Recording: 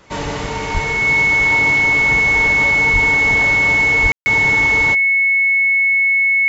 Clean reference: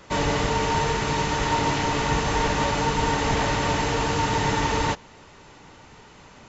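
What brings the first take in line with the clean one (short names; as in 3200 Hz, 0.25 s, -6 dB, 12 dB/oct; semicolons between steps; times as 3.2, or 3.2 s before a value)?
notch 2200 Hz, Q 30; 0.73–0.85 HPF 140 Hz 24 dB/oct; 2.92–3.04 HPF 140 Hz 24 dB/oct; 4.02–4.14 HPF 140 Hz 24 dB/oct; room tone fill 4.12–4.26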